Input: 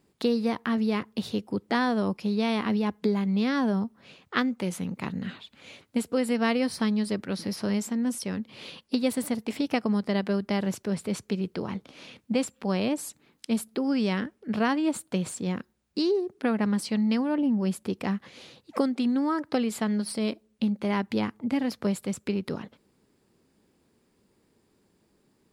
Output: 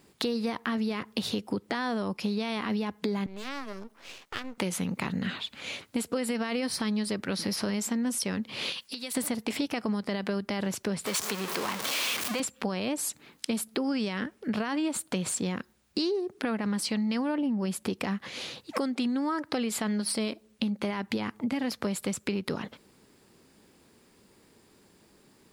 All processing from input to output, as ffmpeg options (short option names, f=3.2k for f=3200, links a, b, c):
-filter_complex "[0:a]asettb=1/sr,asplit=3[a][b][c];[a]atrim=end=3.264[d];[b]atrim=start=3.26:end=4.58,asetpts=PTS-STARTPTS,afade=t=in:d=0.004:c=qsin,afade=t=out:st=1.316:d=0.004:c=qsin,highpass=f=260:w=0.5412,highpass=f=260:w=1.3066,acompressor=threshold=-41dB:ratio=3:attack=3.2:release=140:knee=1:detection=peak,aeval=exprs='max(val(0),0)':c=same[e];[c]atrim=start=4.576[f];[d][e]acrossfade=d=0.004:c1=hsin:c2=qsin[g];[g][f]acrossfade=d=0.004:c1=qsin:c2=hsin,asettb=1/sr,asplit=3[h][i][j];[h]atrim=end=8.724[k];[i]atrim=start=8.72:end=9.15,asetpts=PTS-STARTPTS,afade=t=in:d=0.004:c=qsin,afade=t=out:st=0.426:d=0.004:c=qsin,tiltshelf=f=1.3k:g=-7,acompressor=threshold=-44dB:ratio=5:attack=3.2:release=140:knee=1:detection=peak[l];[j]atrim=start=9.146[m];[k][l]acrossfade=d=0.004:c1=hsin:c2=qsin[n];[n][m]acrossfade=d=0.004:c1=qsin:c2=hsin,asettb=1/sr,asplit=3[o][p][q];[o]atrim=end=11.064[r];[p]atrim=start=11.06:end=12.4,asetpts=PTS-STARTPTS,afade=t=in:d=0.004:c=qsin,afade=t=out:st=1.336:d=0.004:c=qsin,aeval=exprs='val(0)+0.5*0.0316*sgn(val(0))':c=same,highpass=f=700:p=1,equalizer=f=1.1k:w=7.5:g=5.5[s];[q]atrim=start=12.396[t];[r][s]acrossfade=d=0.004:c1=hsin:c2=qsin[u];[u][t]acrossfade=d=0.004:c1=qsin:c2=hsin,tiltshelf=f=720:g=-3,alimiter=limit=-20.5dB:level=0:latency=1:release=20,acompressor=threshold=-35dB:ratio=6,volume=8dB"